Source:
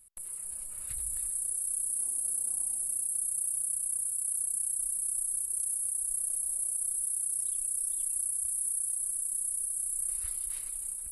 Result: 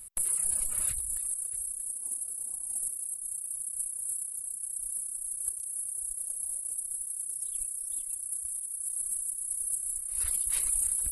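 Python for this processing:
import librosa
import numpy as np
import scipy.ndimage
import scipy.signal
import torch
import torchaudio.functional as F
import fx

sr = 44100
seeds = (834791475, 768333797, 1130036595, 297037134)

y = fx.dereverb_blind(x, sr, rt60_s=1.8)
y = y + 10.0 ** (-12.5 / 20.0) * np.pad(y, (int(626 * sr / 1000.0), 0))[:len(y)]
y = fx.over_compress(y, sr, threshold_db=-40.0, ratio=-0.5)
y = y * librosa.db_to_amplitude(7.5)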